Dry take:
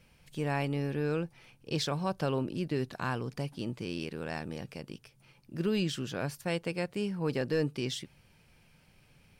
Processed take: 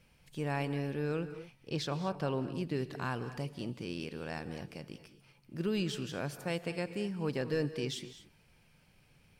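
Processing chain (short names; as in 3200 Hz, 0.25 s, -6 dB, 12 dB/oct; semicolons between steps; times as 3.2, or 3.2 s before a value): 1.7–2.53 high shelf 4700 Hz -6 dB; non-linear reverb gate 0.26 s rising, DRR 11.5 dB; gain -3 dB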